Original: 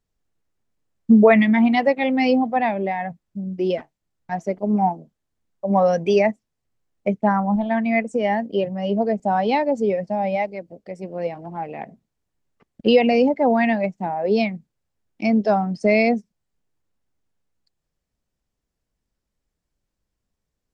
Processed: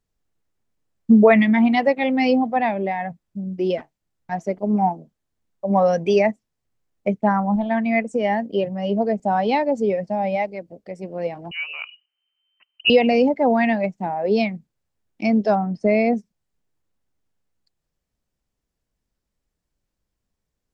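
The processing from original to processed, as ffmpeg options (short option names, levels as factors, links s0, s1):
-filter_complex "[0:a]asettb=1/sr,asplit=3[s0][s1][s2];[s0]atrim=end=11.514[s3];[s1]atrim=start=11.51:end=12.9,asetpts=PTS-STARTPTS,afade=t=in:d=0.004:c=qsin,afade=t=out:st=1.386:d=0.004:c=qsin,lowpass=f=2600:t=q:w=0.5098,lowpass=f=2600:t=q:w=0.6013,lowpass=f=2600:t=q:w=0.9,lowpass=f=2600:t=q:w=2.563,afreqshift=-3100[s4];[s2]atrim=start=12.896[s5];[s3][s4]acrossfade=d=0.004:c1=hsin:c2=qsin[s6];[s6][s5]acrossfade=d=0.004:c1=qsin:c2=hsin,asettb=1/sr,asplit=3[s7][s8][s9];[s7]atrim=end=15.554[s10];[s8]atrim=start=15.55:end=16.13,asetpts=PTS-STARTPTS,afade=t=in:d=0.004:c=qsin,afade=t=out:st=0.576:d=0.004:c=qsin,lowpass=f=1400:p=1[s11];[s9]atrim=start=16.126[s12];[s10][s11]acrossfade=d=0.004:c1=hsin:c2=qsin[s13];[s13][s12]acrossfade=d=0.004:c1=qsin:c2=hsin"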